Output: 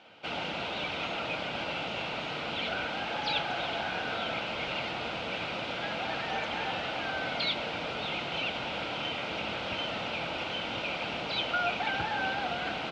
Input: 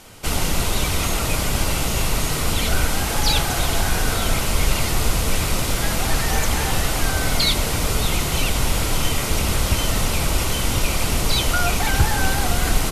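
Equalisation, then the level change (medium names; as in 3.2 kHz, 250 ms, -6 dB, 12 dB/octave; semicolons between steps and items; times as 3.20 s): cabinet simulation 250–3100 Hz, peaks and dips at 260 Hz -3 dB, 400 Hz -8 dB, 1.1 kHz -10 dB, 1.9 kHz -9 dB; bass shelf 490 Hz -6 dB; -2.5 dB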